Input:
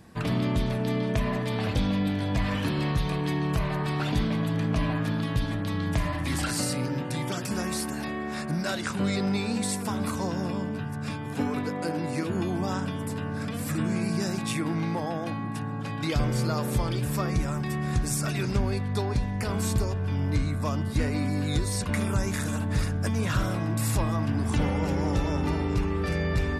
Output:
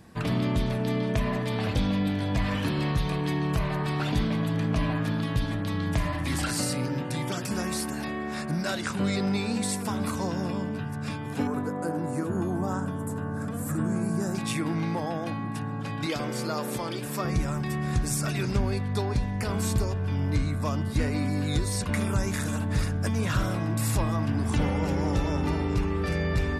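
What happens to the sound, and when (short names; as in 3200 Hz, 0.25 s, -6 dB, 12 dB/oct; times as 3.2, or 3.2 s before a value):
11.47–14.35 band shelf 3300 Hz -13 dB
16.06–17.25 HPF 220 Hz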